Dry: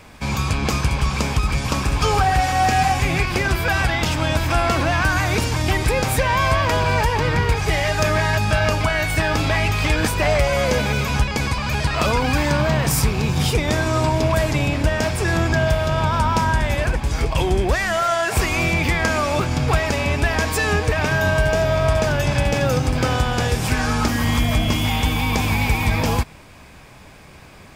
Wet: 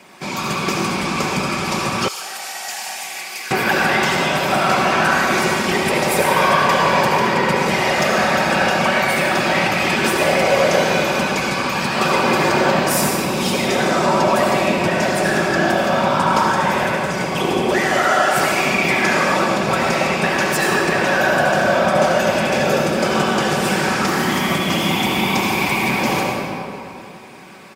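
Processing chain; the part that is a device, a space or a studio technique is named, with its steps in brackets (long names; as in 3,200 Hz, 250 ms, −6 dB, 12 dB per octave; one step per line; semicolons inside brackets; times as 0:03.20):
whispering ghost (random phases in short frames; high-pass filter 230 Hz 12 dB per octave; convolution reverb RT60 2.7 s, pre-delay 65 ms, DRR −1.5 dB)
comb filter 5.3 ms, depth 39%
0:02.08–0:03.51: first difference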